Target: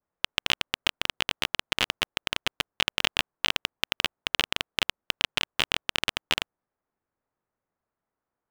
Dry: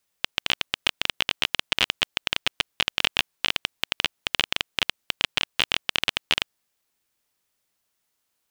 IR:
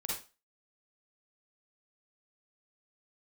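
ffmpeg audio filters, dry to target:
-filter_complex "[0:a]adynamicequalizer=threshold=0.0126:dfrequency=3300:dqfactor=0.77:tfrequency=3300:tqfactor=0.77:attack=5:release=100:ratio=0.375:range=2.5:mode=cutabove:tftype=bell,acrossover=split=1600[s0][s1];[s1]acrusher=bits=5:mix=0:aa=0.000001[s2];[s0][s2]amix=inputs=2:normalize=0"

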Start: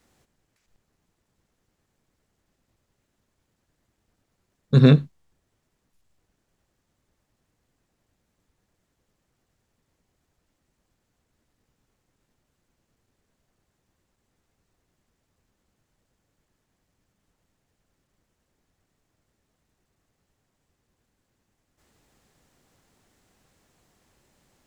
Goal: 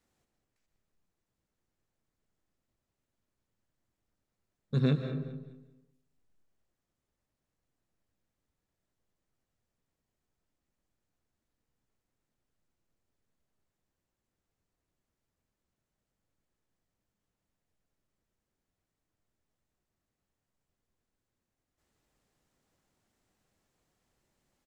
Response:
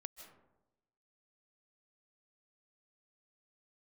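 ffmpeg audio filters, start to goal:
-filter_complex "[0:a]aecho=1:1:208|416|624:0.158|0.0475|0.0143[s0];[1:a]atrim=start_sample=2205[s1];[s0][s1]afir=irnorm=-1:irlink=0,volume=0.422"

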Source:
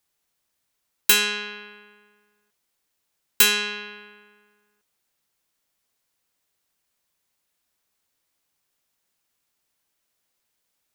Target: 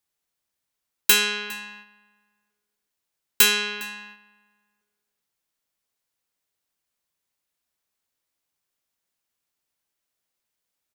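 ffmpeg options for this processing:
-filter_complex "[0:a]asplit=2[s0][s1];[s1]adelay=408.2,volume=0.178,highshelf=f=4000:g=-9.18[s2];[s0][s2]amix=inputs=2:normalize=0,agate=range=0.501:threshold=0.00562:ratio=16:detection=peak"

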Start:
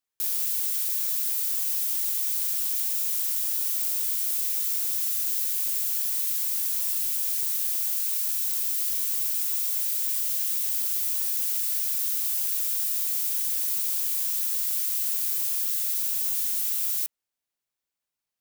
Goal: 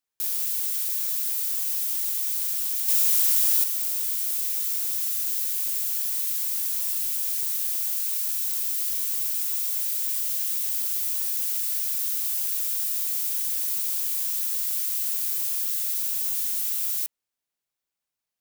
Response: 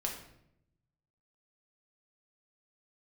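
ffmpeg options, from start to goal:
-filter_complex "[0:a]asettb=1/sr,asplit=3[s0][s1][s2];[s0]atrim=end=2.884[s3];[s1]atrim=start=2.88:end=3.64,asetpts=PTS-STARTPTS,afade=t=in:d=0.004:c=qsin,afade=t=out:st=0.756:d=0.004:c=qsin,acontrast=68[s4];[s2]atrim=start=3.636[s5];[s3][s4]acrossfade=d=0.004:c1=hsin:c2=qsin[s6];[s6][s5]acrossfade=d=0.004:c1=qsin:c2=hsin"

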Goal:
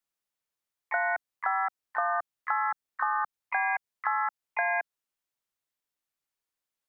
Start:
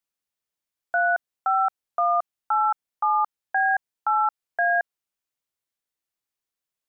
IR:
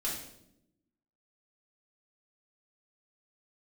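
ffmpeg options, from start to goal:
-filter_complex "[0:a]equalizer=f=1100:t=o:w=1.9:g=2.5,acrossover=split=310|3000[s0][s1][s2];[s1]acompressor=threshold=0.0631:ratio=10[s3];[s0][s3][s2]amix=inputs=3:normalize=0,asplit=4[s4][s5][s6][s7];[s5]asetrate=55563,aresample=44100,atempo=0.793701,volume=0.501[s8];[s6]asetrate=58866,aresample=44100,atempo=0.749154,volume=0.126[s9];[s7]asetrate=66075,aresample=44100,atempo=0.66742,volume=0.316[s10];[s4][s8][s9][s10]amix=inputs=4:normalize=0,volume=0.708"

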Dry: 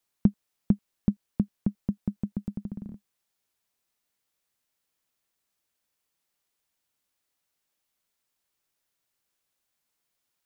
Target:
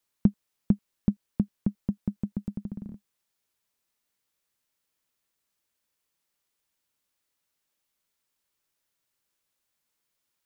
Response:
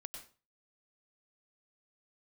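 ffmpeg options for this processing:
-af "bandreject=f=730:w=12"

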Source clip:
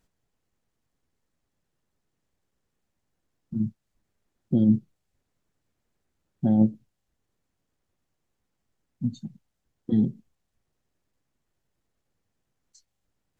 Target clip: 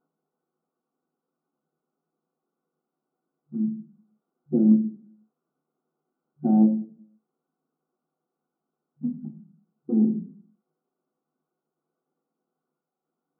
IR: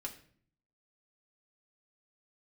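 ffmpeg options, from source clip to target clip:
-filter_complex "[1:a]atrim=start_sample=2205,asetrate=57330,aresample=44100[s0];[0:a][s0]afir=irnorm=-1:irlink=0,aeval=exprs='0.237*(cos(1*acos(clip(val(0)/0.237,-1,1)))-cos(1*PI/2))+0.00266*(cos(3*acos(clip(val(0)/0.237,-1,1)))-cos(3*PI/2))+0.00168*(cos(5*acos(clip(val(0)/0.237,-1,1)))-cos(5*PI/2))':c=same,afftfilt=real='re*between(b*sr/4096,150,1500)':imag='im*between(b*sr/4096,150,1500)':win_size=4096:overlap=0.75,volume=1.88"

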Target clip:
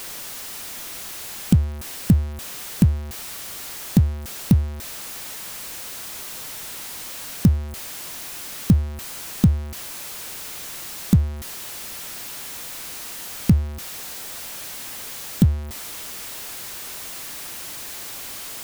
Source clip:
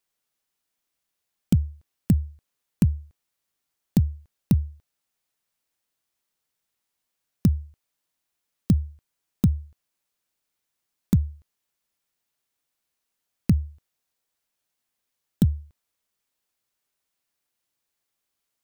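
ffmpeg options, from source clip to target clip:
-af "aeval=exprs='val(0)+0.5*0.0266*sgn(val(0))':c=same,volume=1.5"

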